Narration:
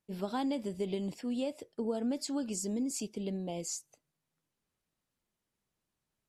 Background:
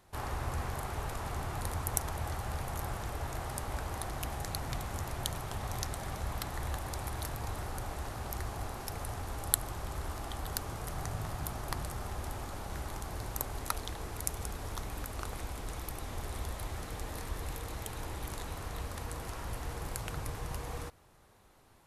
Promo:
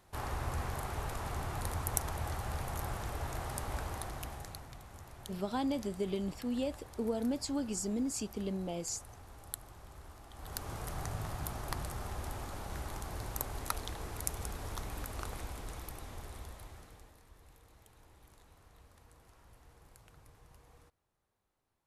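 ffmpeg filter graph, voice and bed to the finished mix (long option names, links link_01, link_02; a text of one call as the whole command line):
ffmpeg -i stem1.wav -i stem2.wav -filter_complex "[0:a]adelay=5200,volume=-0.5dB[link_01];[1:a]volume=11dB,afade=type=out:start_time=3.8:duration=0.91:silence=0.237137,afade=type=in:start_time=10.32:duration=0.42:silence=0.251189,afade=type=out:start_time=15.21:duration=1.96:silence=0.105925[link_02];[link_01][link_02]amix=inputs=2:normalize=0" out.wav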